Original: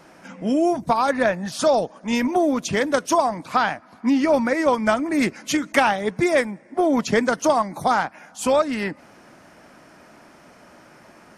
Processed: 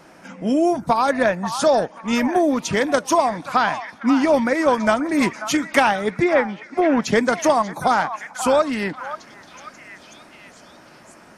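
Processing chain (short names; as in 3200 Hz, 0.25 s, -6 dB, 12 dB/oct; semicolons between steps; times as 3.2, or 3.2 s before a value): 6.12–7.04 treble ducked by the level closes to 2300 Hz, closed at -13.5 dBFS; delay with a stepping band-pass 0.537 s, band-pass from 1100 Hz, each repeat 0.7 oct, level -8 dB; gain +1.5 dB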